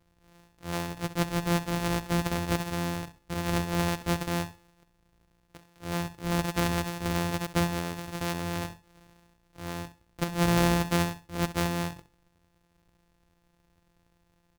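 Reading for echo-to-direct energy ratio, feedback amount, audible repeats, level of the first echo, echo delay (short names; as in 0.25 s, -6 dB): -13.5 dB, 23%, 2, -14.0 dB, 65 ms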